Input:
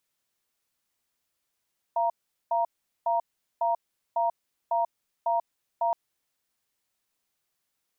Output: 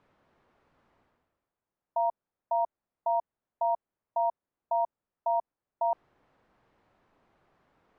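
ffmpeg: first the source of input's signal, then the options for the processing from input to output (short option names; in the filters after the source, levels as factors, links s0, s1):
-f lavfi -i "aevalsrc='0.0562*(sin(2*PI*684*t)+sin(2*PI*936*t))*clip(min(mod(t,0.55),0.14-mod(t,0.55))/0.005,0,1)':d=3.97:s=44100"
-af "lowpass=1100,areverse,acompressor=mode=upward:threshold=0.00316:ratio=2.5,areverse"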